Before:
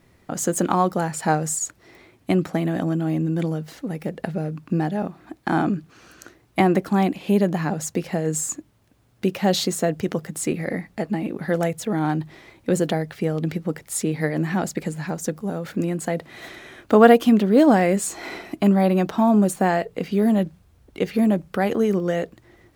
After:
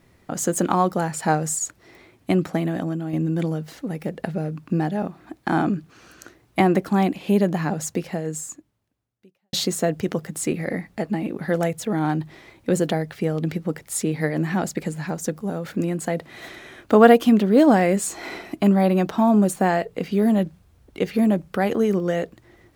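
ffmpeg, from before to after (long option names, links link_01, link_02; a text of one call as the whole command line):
ffmpeg -i in.wav -filter_complex "[0:a]asplit=3[link_01][link_02][link_03];[link_01]atrim=end=3.13,asetpts=PTS-STARTPTS,afade=type=out:start_time=2.56:duration=0.57:silence=0.473151[link_04];[link_02]atrim=start=3.13:end=9.53,asetpts=PTS-STARTPTS,afade=type=in:duration=0.004:curve=hsin:silence=0.473151,afade=type=out:start_time=4.77:duration=1.63:curve=qua[link_05];[link_03]atrim=start=9.53,asetpts=PTS-STARTPTS,afade=type=in:duration=0.004:curve=hsin[link_06];[link_04][link_05][link_06]concat=n=3:v=0:a=1" out.wav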